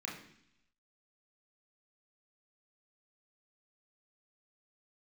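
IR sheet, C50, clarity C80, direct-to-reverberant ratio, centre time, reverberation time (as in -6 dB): 6.0 dB, 9.5 dB, -3.0 dB, 36 ms, 0.70 s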